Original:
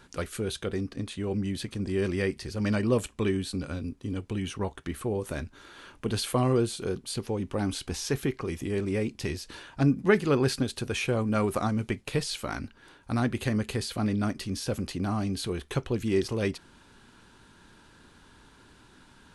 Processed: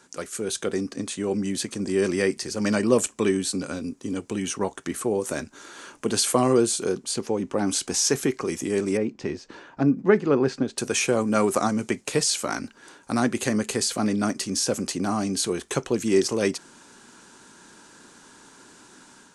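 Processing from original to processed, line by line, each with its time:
6.91–7.66 s: low-pass 6.3 kHz -> 2.8 kHz 6 dB/octave
8.97–10.78 s: tape spacing loss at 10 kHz 30 dB
whole clip: three-band isolator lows -20 dB, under 170 Hz, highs -16 dB, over 7.4 kHz; level rider gain up to 6.5 dB; resonant high shelf 5.2 kHz +12 dB, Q 1.5

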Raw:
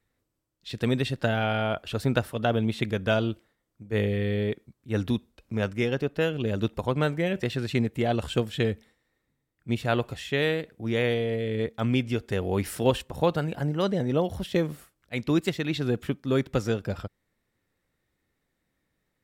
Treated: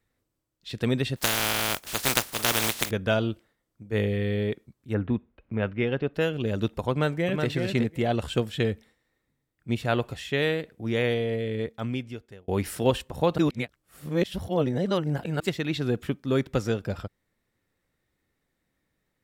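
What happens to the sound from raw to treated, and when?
1.16–2.89 s: spectral contrast reduction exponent 0.21
4.93–6.13 s: low-pass 2 kHz -> 3.9 kHz 24 dB/octave
6.91–7.47 s: echo throw 370 ms, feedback 10%, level -5 dB
11.39–12.48 s: fade out
13.38–15.40 s: reverse

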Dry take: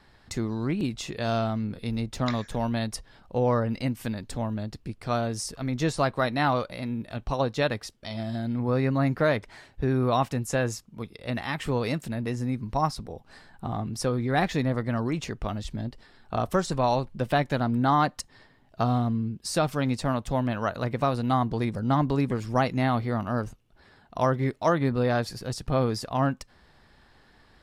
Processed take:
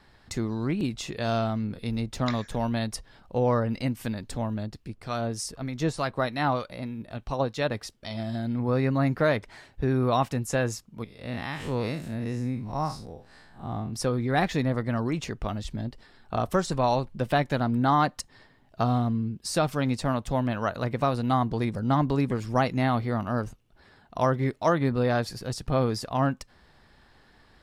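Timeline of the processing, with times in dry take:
4.67–7.74 s: harmonic tremolo 3.3 Hz, depth 50%, crossover 1.3 kHz
11.04–13.93 s: spectral blur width 112 ms

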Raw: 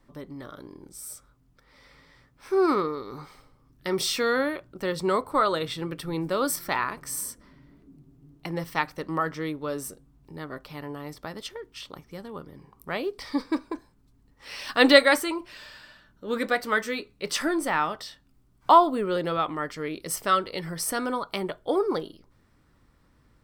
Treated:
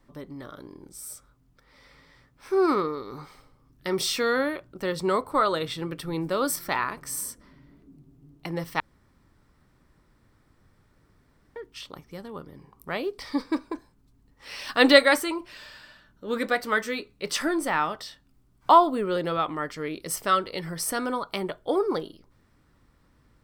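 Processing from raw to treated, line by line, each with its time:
8.80–11.56 s: room tone

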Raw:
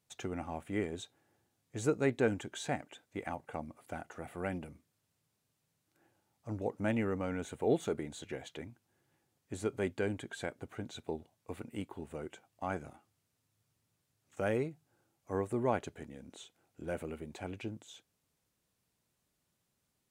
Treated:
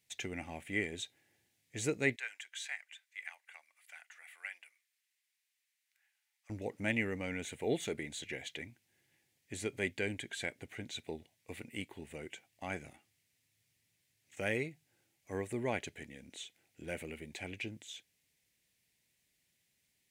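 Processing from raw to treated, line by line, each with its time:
2.16–6.50 s: ladder high-pass 1 kHz, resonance 25%
whole clip: resonant high shelf 1.6 kHz +7.5 dB, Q 3; trim -3.5 dB

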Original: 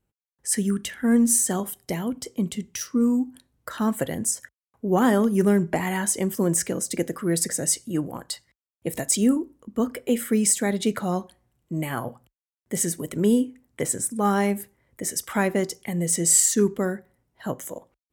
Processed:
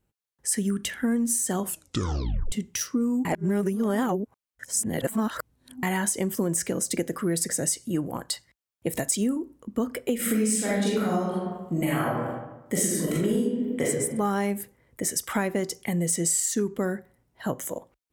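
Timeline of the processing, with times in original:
1.63 s: tape stop 0.89 s
3.25–5.83 s: reverse
10.15–13.86 s: reverb throw, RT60 1 s, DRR -7 dB
whole clip: compression, threshold -25 dBFS; trim +2.5 dB

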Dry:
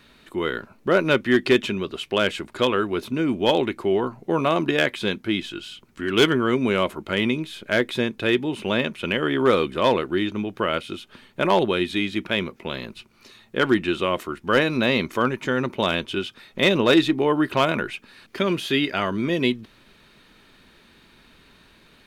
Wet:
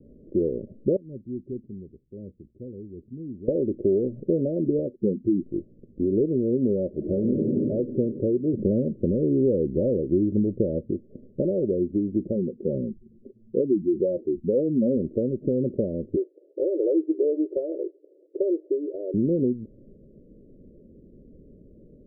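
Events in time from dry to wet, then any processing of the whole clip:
0.96–3.48 s: amplifier tone stack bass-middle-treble 6-0-2
4.87–5.46 s: spectral contrast enhancement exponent 1.7
6.89–7.42 s: reverb throw, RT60 2.5 s, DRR 0.5 dB
8.53–10.91 s: bass shelf 300 Hz +8 dB
12.35–14.97 s: spectral contrast enhancement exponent 2
16.16–19.14 s: brick-wall FIR high-pass 300 Hz
whole clip: compression 5:1, threshold -26 dBFS; steep low-pass 580 Hz 96 dB/octave; trim +7 dB

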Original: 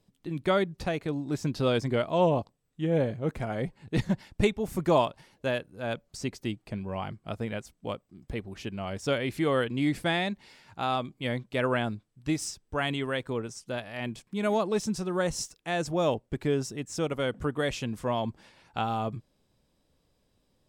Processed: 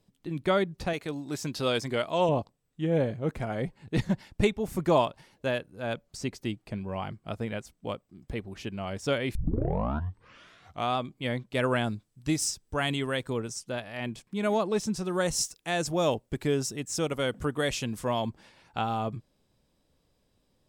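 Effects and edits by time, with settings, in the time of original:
0.93–2.29 s: tilt EQ +2 dB/octave
9.35 s: tape start 1.62 s
11.55–13.63 s: tone controls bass +2 dB, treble +7 dB
15.04–18.29 s: treble shelf 4.4 kHz +8.5 dB

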